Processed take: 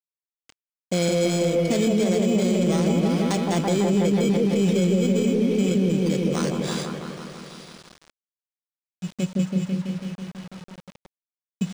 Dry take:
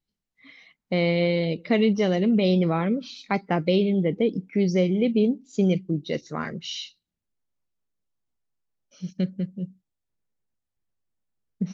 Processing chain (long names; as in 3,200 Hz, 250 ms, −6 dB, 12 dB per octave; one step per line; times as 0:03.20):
samples in bit-reversed order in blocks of 16 samples
in parallel at −11 dB: soft clipping −23 dBFS, distortion −10 dB
on the sum: downward expander −42 dBFS
on a send: echo whose low-pass opens from repeat to repeat 165 ms, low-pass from 750 Hz, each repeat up 1 octave, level 0 dB
on the sum: brickwall limiter −13 dBFS, peak gain reduction 9 dB
bit reduction 7 bits
linearly interpolated sample-rate reduction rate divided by 3×